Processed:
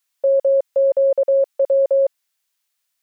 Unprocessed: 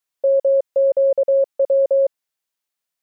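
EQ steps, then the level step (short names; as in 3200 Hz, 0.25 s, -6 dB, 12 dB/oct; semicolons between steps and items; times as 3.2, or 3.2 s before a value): tilt shelf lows -7 dB, about 730 Hz; +2.0 dB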